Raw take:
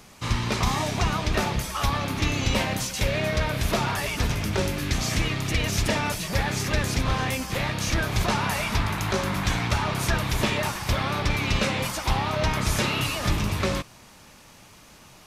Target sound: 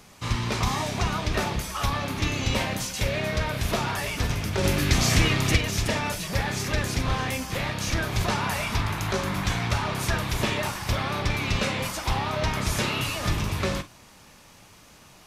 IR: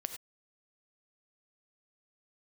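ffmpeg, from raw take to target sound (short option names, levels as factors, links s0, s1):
-filter_complex "[0:a]asplit=3[s0][s1][s2];[s0]afade=t=out:st=4.63:d=0.02[s3];[s1]acontrast=60,afade=t=in:st=4.63:d=0.02,afade=t=out:st=5.56:d=0.02[s4];[s2]afade=t=in:st=5.56:d=0.02[s5];[s3][s4][s5]amix=inputs=3:normalize=0[s6];[1:a]atrim=start_sample=2205,atrim=end_sample=3528,asetrate=70560,aresample=44100[s7];[s6][s7]afir=irnorm=-1:irlink=0,volume=1.58"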